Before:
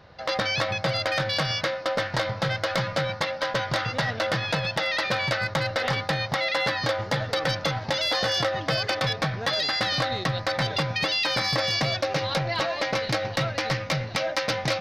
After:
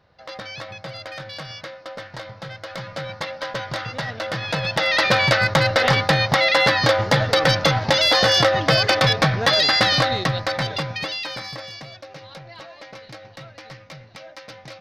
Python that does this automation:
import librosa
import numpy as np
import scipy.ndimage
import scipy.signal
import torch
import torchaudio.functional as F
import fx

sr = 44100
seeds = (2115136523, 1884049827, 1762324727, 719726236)

y = fx.gain(x, sr, db=fx.line((2.59, -9.0), (3.23, -2.0), (4.27, -2.0), (5.03, 8.5), (9.83, 8.5), (11.13, -3.0), (11.89, -14.0)))